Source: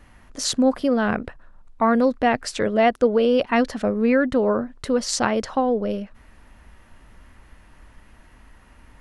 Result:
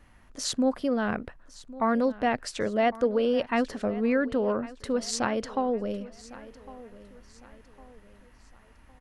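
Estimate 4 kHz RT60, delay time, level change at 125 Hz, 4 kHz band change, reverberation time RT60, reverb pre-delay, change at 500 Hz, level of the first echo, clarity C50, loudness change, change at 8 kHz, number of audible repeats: no reverb audible, 1,106 ms, −6.5 dB, −6.5 dB, no reverb audible, no reverb audible, −6.5 dB, −18.5 dB, no reverb audible, −6.5 dB, −6.5 dB, 3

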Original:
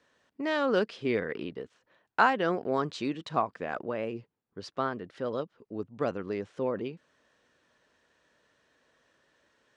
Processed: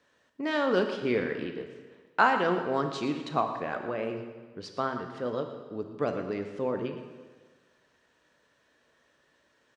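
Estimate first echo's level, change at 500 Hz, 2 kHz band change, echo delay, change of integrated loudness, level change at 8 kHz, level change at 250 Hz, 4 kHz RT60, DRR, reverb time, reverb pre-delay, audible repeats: −13.0 dB, +1.0 dB, +1.5 dB, 117 ms, +1.0 dB, can't be measured, +1.5 dB, 1.4 s, 5.0 dB, 1.5 s, 4 ms, 1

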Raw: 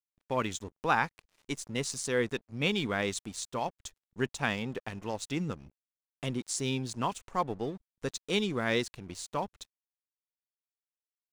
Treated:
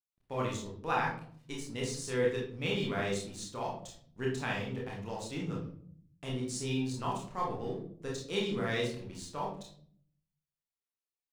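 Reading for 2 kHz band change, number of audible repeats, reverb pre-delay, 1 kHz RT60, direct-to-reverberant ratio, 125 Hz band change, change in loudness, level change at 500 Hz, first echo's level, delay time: −4.0 dB, no echo audible, 25 ms, 0.50 s, −3.5 dB, 0.0 dB, −2.5 dB, −1.0 dB, no echo audible, no echo audible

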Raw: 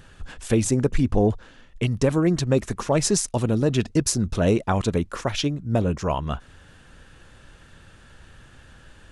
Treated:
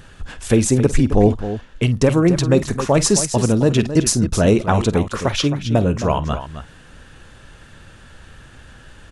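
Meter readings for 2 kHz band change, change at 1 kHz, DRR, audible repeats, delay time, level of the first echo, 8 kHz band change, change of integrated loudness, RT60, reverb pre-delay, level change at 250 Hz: +6.0 dB, +6.0 dB, no reverb audible, 2, 49 ms, −16.0 dB, +6.0 dB, +5.5 dB, no reverb audible, no reverb audible, +6.0 dB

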